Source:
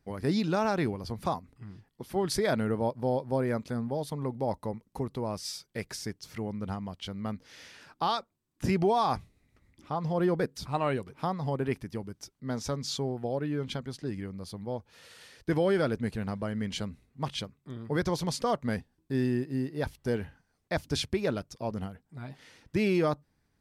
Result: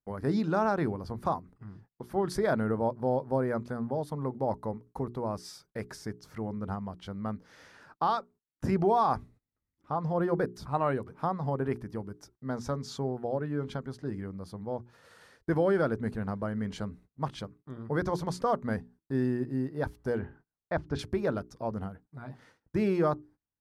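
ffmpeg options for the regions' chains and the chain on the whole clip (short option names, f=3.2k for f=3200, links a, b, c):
-filter_complex "[0:a]asettb=1/sr,asplit=3[a][b][c];[a]atrim=end=20.194[d];[b]atrim=start=20.19:end=20.99,asetpts=PTS-STARTPTS,afade=t=in:d=0.004:c=qsin,afade=t=out:st=0.796:d=0.004:c=qsin,lowpass=3.2k,bandreject=f=152.7:t=h:w=4,bandreject=f=305.4:t=h:w=4[e];[c]atrim=start=20.986[f];[d][e]acrossfade=d=0.004:c1=hsin:c2=qsin[g];[g][f]acrossfade=d=0.004:c1=qsin:c2=hsin,bandreject=f=60:t=h:w=6,bandreject=f=120:t=h:w=6,bandreject=f=180:t=h:w=6,bandreject=f=240:t=h:w=6,bandreject=f=300:t=h:w=6,bandreject=f=360:t=h:w=6,bandreject=f=420:t=h:w=6,agate=range=-23dB:threshold=-54dB:ratio=16:detection=peak,highshelf=f=1.9k:t=q:w=1.5:g=-8"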